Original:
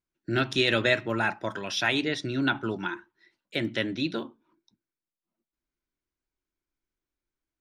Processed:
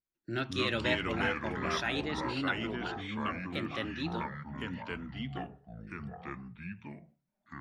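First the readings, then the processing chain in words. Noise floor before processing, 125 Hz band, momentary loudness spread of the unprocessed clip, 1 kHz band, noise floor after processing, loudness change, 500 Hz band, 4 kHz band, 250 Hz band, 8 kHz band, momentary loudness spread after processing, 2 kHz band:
under -85 dBFS, -3.0 dB, 11 LU, -2.0 dB, -84 dBFS, -7.5 dB, -6.5 dB, -7.0 dB, -4.5 dB, -8.0 dB, 14 LU, -6.0 dB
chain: ever faster or slower copies 138 ms, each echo -4 st, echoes 3; trim -8.5 dB

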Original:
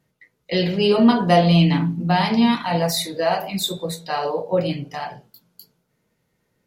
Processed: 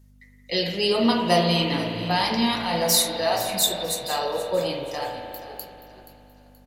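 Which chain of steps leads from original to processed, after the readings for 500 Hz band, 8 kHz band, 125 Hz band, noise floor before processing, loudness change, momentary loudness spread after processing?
-3.0 dB, +7.5 dB, -9.5 dB, -72 dBFS, -3.5 dB, 15 LU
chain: tone controls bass -8 dB, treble +12 dB; hum 50 Hz, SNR 27 dB; on a send: frequency-shifting echo 477 ms, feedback 37%, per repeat -58 Hz, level -14.5 dB; on the sum: spring tank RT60 3.2 s, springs 52 ms, chirp 45 ms, DRR 4 dB; trim -4 dB

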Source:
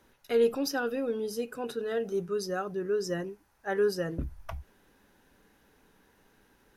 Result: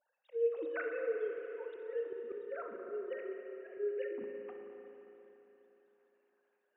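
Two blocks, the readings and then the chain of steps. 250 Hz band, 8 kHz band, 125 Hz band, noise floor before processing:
-16.0 dB, under -35 dB, under -30 dB, -66 dBFS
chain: formants replaced by sine waves; slow attack 278 ms; spring tank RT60 3.6 s, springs 34/57 ms, chirp 45 ms, DRR 2 dB; trim -2.5 dB

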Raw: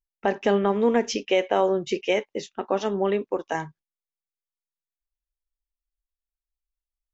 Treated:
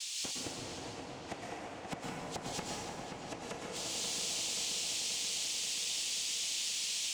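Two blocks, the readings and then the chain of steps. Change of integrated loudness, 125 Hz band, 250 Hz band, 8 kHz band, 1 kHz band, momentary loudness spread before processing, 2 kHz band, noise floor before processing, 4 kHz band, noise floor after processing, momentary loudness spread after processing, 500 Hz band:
-11.5 dB, -10.5 dB, -18.0 dB, no reading, -15.0 dB, 10 LU, -9.5 dB, under -85 dBFS, +3.5 dB, -47 dBFS, 11 LU, -22.5 dB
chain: level-controlled noise filter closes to 1.2 kHz, open at -21 dBFS; expander -44 dBFS; transient shaper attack +7 dB, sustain -10 dB; in parallel at -2.5 dB: peak limiter -14.5 dBFS, peak gain reduction 11.5 dB; on the sum: sample-rate reducer 2 kHz, jitter 0%; whistle 6 kHz -37 dBFS; inverted gate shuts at -19 dBFS, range -37 dB; noise-vocoded speech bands 4; saturation -33 dBFS, distortion -12 dB; on a send: filtered feedback delay 531 ms, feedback 72%, low-pass 3.4 kHz, level -6 dB; on the sum: plate-style reverb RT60 2.4 s, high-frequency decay 0.6×, pre-delay 100 ms, DRR -3.5 dB

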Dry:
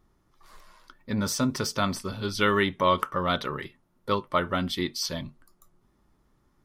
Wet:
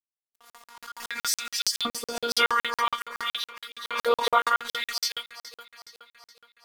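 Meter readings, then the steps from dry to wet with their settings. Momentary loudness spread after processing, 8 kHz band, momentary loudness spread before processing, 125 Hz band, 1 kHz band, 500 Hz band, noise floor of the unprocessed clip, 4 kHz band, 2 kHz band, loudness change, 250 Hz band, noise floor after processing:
19 LU, +4.0 dB, 13 LU, under -25 dB, +1.5 dB, -2.5 dB, -68 dBFS, +4.5 dB, +2.5 dB, +0.5 dB, -15.0 dB, under -85 dBFS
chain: phase randomisation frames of 50 ms; LFO high-pass saw up 0.54 Hz 350–4300 Hz; in parallel at +1.5 dB: compression, threshold -39 dBFS, peak gain reduction 22.5 dB; on the sum: crossover distortion -50 dBFS; treble shelf 7.6 kHz +7 dB; robot voice 236 Hz; on a send: echo whose repeats swap between lows and highs 208 ms, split 2.2 kHz, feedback 75%, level -14 dB; on the sum: crackling interface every 0.14 s, samples 2048, zero, from 0.36 s; swell ahead of each attack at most 64 dB/s; trim +1.5 dB

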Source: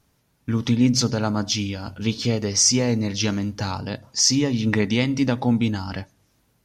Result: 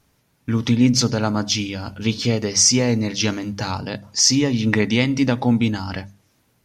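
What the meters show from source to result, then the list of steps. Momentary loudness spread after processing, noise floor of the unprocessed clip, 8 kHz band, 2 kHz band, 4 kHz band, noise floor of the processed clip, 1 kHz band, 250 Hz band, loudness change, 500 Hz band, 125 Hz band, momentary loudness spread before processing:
12 LU, -66 dBFS, +2.5 dB, +4.0 dB, +2.5 dB, -64 dBFS, +2.5 dB, +2.5 dB, +2.5 dB, +2.5 dB, +2.0 dB, 12 LU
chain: peaking EQ 2.2 kHz +2 dB; hum notches 50/100/150/200 Hz; trim +2.5 dB

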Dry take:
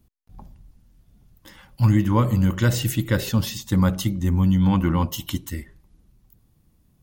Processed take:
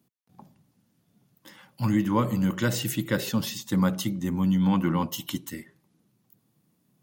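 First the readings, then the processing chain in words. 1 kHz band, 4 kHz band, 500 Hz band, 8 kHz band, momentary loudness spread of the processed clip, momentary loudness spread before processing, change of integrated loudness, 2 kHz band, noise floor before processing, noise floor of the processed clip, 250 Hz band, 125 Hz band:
-2.5 dB, -2.5 dB, -2.5 dB, -2.5 dB, 10 LU, 11 LU, -5.0 dB, -2.5 dB, -63 dBFS, -71 dBFS, -3.0 dB, -8.5 dB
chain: high-pass 140 Hz 24 dB/octave; trim -2.5 dB

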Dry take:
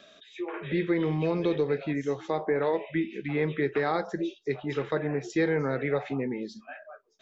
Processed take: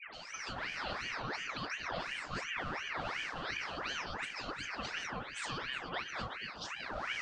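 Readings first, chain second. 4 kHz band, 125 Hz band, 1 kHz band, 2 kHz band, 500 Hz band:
+5.5 dB, -16.0 dB, -4.5 dB, -1.5 dB, -19.0 dB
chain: wind noise 520 Hz -35 dBFS; FFT filter 110 Hz 0 dB, 250 Hz -29 dB, 670 Hz +1 dB, 1.3 kHz -15 dB, 3.7 kHz +11 dB; compression, threshold -37 dBFS, peak gain reduction 11 dB; waveshaping leveller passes 1; distance through air 110 m; phase dispersion highs, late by 144 ms, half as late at 1.4 kHz; on a send: bucket-brigade echo 244 ms, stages 2048, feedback 66%, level -6.5 dB; on the sum: ring modulator with a swept carrier 1.5 kHz, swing 60%, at 2.8 Hz

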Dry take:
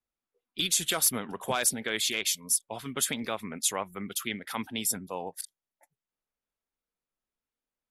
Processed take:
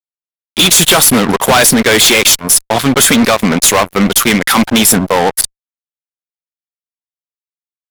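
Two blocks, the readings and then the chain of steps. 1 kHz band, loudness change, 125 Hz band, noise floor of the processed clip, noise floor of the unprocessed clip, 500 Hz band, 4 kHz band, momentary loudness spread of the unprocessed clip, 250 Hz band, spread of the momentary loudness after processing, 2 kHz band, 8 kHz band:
+23.0 dB, +20.5 dB, +25.0 dB, under -85 dBFS, under -85 dBFS, +23.5 dB, +20.5 dB, 12 LU, +25.5 dB, 6 LU, +22.0 dB, +18.5 dB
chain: fuzz box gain 38 dB, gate -46 dBFS; trim +8 dB

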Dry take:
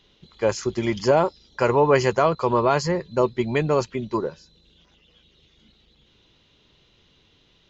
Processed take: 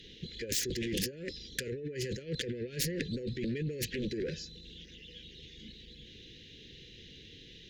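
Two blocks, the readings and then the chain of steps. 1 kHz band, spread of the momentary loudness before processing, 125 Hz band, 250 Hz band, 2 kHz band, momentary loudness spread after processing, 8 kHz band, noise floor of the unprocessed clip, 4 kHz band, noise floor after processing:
under -40 dB, 9 LU, -10.5 dB, -11.0 dB, -12.0 dB, 17 LU, no reading, -61 dBFS, -2.0 dB, -53 dBFS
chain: compressor with a negative ratio -31 dBFS, ratio -1; Chebyshev shaper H 7 -7 dB, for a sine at -10.5 dBFS; Chebyshev band-stop 500–1700 Hz, order 4; trim -7 dB

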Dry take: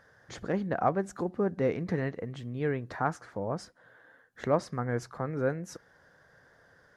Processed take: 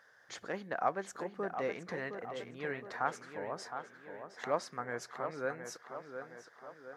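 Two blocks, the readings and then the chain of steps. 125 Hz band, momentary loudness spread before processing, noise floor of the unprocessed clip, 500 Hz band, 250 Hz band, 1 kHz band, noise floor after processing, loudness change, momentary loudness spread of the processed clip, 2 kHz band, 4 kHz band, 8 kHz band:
-17.0 dB, 11 LU, -62 dBFS, -6.5 dB, -12.5 dB, -3.0 dB, -63 dBFS, -7.5 dB, 13 LU, -1.0 dB, 0.0 dB, -0.5 dB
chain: high-pass 1.1 kHz 6 dB/octave; peaking EQ 9.7 kHz -3 dB 0.37 oct; tape echo 715 ms, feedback 57%, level -7 dB, low-pass 2.9 kHz

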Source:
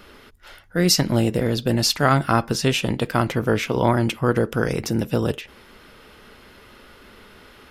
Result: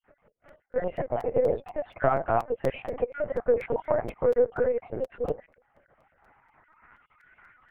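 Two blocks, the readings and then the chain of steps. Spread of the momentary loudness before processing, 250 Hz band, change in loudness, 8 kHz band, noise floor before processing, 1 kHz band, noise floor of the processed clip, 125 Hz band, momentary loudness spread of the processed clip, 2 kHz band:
6 LU, -16.5 dB, -7.0 dB, under -35 dB, -49 dBFS, -7.0 dB, -72 dBFS, -17.5 dB, 9 LU, -12.5 dB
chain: random holes in the spectrogram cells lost 33%; waveshaping leveller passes 2; band-pass sweep 560 Hz -> 1.4 kHz, 5.66–7.12 s; cabinet simulation 310–2400 Hz, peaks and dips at 350 Hz -7 dB, 1.1 kHz -5 dB, 2.1 kHz +5 dB; LPC vocoder at 8 kHz pitch kept; crackling interface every 0.24 s, samples 256, repeat, from 0.48 s

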